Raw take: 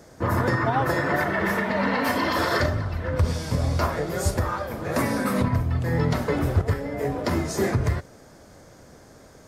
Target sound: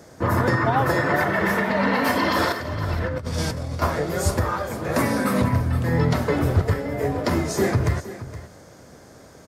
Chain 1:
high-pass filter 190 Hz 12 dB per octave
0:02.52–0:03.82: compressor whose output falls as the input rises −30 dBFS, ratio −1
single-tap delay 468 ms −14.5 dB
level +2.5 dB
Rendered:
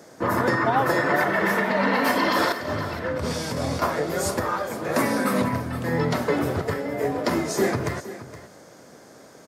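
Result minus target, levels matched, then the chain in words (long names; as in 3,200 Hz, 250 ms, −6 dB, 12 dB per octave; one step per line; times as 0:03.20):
125 Hz band −6.5 dB
high-pass filter 59 Hz 12 dB per octave
0:02.52–0:03.82: compressor whose output falls as the input rises −30 dBFS, ratio −1
single-tap delay 468 ms −14.5 dB
level +2.5 dB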